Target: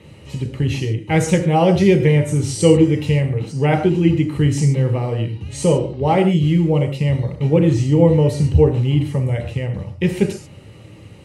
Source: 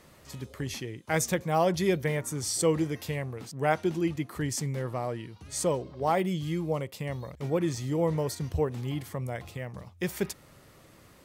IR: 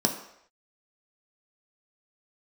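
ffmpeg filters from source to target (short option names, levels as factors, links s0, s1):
-filter_complex "[1:a]atrim=start_sample=2205,atrim=end_sample=3528,asetrate=22491,aresample=44100[s0];[0:a][s0]afir=irnorm=-1:irlink=0,volume=0.501"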